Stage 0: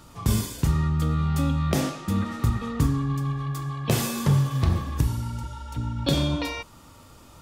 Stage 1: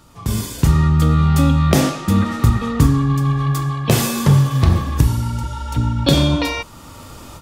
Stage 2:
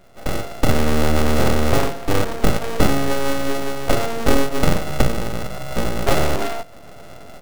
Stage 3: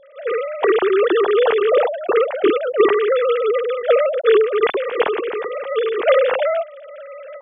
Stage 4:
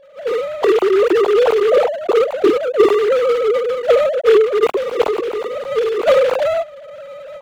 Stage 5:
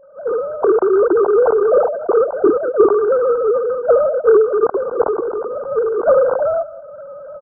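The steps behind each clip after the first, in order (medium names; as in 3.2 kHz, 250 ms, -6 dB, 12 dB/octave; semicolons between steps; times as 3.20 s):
level rider gain up to 14 dB
sorted samples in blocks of 64 samples; full-wave rectifier
formants replaced by sine waves; trim -1.5 dB
median filter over 25 samples; trim +3 dB
brick-wall FIR low-pass 1.6 kHz; delay 189 ms -19.5 dB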